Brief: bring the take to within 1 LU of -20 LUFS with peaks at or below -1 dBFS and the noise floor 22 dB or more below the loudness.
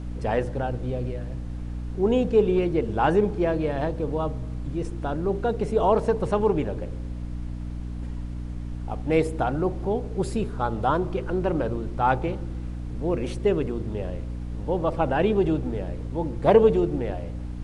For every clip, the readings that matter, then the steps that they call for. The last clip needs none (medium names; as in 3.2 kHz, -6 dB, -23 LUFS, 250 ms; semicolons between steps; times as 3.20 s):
hum 60 Hz; highest harmonic 300 Hz; hum level -30 dBFS; noise floor -33 dBFS; noise floor target -48 dBFS; loudness -26.0 LUFS; peak level -4.5 dBFS; loudness target -20.0 LUFS
-> de-hum 60 Hz, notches 5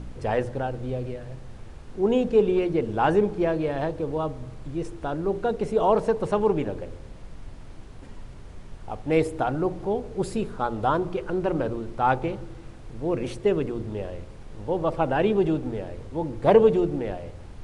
hum not found; noise floor -42 dBFS; noise floor target -48 dBFS
-> noise print and reduce 6 dB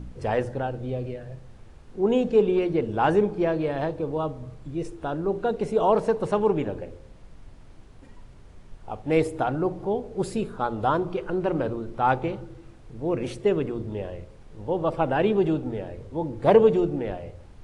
noise floor -48 dBFS; loudness -25.5 LUFS; peak level -5.0 dBFS; loudness target -20.0 LUFS
-> trim +5.5 dB; peak limiter -1 dBFS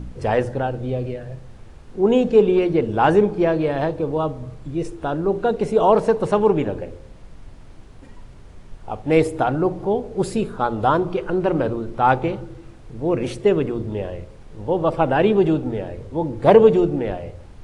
loudness -20.0 LUFS; peak level -1.0 dBFS; noise floor -43 dBFS